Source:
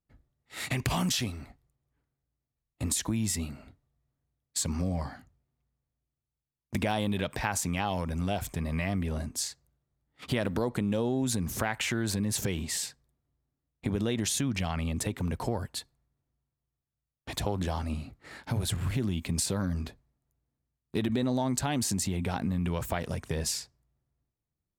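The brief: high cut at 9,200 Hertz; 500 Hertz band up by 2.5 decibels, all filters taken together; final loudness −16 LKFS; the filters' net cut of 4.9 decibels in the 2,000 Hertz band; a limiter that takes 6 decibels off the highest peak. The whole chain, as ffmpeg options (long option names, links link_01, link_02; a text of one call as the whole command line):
ffmpeg -i in.wav -af "lowpass=9200,equalizer=frequency=500:width_type=o:gain=3.5,equalizer=frequency=2000:width_type=o:gain=-6.5,volume=16dB,alimiter=limit=-2.5dB:level=0:latency=1" out.wav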